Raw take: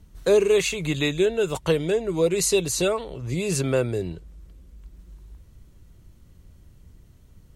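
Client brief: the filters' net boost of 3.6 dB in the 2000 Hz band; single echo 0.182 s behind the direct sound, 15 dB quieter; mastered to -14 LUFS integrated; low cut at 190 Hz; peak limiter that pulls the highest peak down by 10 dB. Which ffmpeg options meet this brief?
-af "highpass=190,equalizer=f=2k:t=o:g=5,alimiter=limit=-18.5dB:level=0:latency=1,aecho=1:1:182:0.178,volume=13.5dB"

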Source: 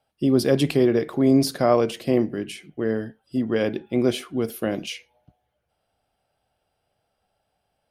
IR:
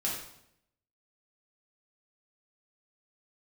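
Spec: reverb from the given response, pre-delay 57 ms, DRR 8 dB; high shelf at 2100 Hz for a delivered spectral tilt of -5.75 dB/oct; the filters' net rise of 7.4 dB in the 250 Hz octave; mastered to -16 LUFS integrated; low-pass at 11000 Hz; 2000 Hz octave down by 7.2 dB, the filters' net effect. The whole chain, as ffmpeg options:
-filter_complex "[0:a]lowpass=11k,equalizer=f=250:t=o:g=8.5,equalizer=f=2k:t=o:g=-6,highshelf=f=2.1k:g=-6,asplit=2[a][b];[1:a]atrim=start_sample=2205,adelay=57[c];[b][c]afir=irnorm=-1:irlink=0,volume=-13dB[d];[a][d]amix=inputs=2:normalize=0,volume=1dB"

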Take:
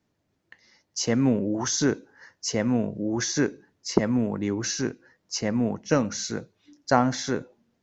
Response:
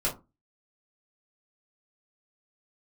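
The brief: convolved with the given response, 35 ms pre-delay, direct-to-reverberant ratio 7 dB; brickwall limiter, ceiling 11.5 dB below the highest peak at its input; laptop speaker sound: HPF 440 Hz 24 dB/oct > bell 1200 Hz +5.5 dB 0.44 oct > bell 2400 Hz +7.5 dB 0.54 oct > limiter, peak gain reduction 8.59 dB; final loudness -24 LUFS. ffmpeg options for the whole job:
-filter_complex "[0:a]alimiter=limit=-15dB:level=0:latency=1,asplit=2[a][b];[1:a]atrim=start_sample=2205,adelay=35[c];[b][c]afir=irnorm=-1:irlink=0,volume=-15dB[d];[a][d]amix=inputs=2:normalize=0,highpass=f=440:w=0.5412,highpass=f=440:w=1.3066,equalizer=f=1.2k:t=o:w=0.44:g=5.5,equalizer=f=2.4k:t=o:w=0.54:g=7.5,volume=9dB,alimiter=limit=-13dB:level=0:latency=1"

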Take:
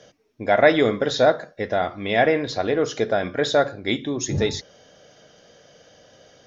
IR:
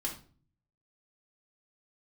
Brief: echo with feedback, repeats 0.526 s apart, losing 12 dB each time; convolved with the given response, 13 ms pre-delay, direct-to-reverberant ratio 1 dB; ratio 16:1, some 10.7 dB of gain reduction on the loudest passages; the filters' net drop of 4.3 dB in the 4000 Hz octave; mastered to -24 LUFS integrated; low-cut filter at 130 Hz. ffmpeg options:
-filter_complex "[0:a]highpass=130,equalizer=f=4k:t=o:g=-5,acompressor=threshold=-21dB:ratio=16,aecho=1:1:526|1052|1578:0.251|0.0628|0.0157,asplit=2[a][b];[1:a]atrim=start_sample=2205,adelay=13[c];[b][c]afir=irnorm=-1:irlink=0,volume=-3dB[d];[a][d]amix=inputs=2:normalize=0,volume=1dB"

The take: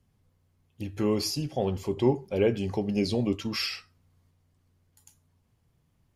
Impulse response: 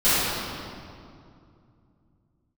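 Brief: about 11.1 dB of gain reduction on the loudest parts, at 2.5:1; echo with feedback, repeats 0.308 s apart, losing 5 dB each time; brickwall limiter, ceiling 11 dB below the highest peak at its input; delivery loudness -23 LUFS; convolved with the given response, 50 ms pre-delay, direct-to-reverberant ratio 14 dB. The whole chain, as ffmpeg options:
-filter_complex "[0:a]acompressor=threshold=-36dB:ratio=2.5,alimiter=level_in=9dB:limit=-24dB:level=0:latency=1,volume=-9dB,aecho=1:1:308|616|924|1232|1540|1848|2156:0.562|0.315|0.176|0.0988|0.0553|0.031|0.0173,asplit=2[a][b];[1:a]atrim=start_sample=2205,adelay=50[c];[b][c]afir=irnorm=-1:irlink=0,volume=-34dB[d];[a][d]amix=inputs=2:normalize=0,volume=18dB"

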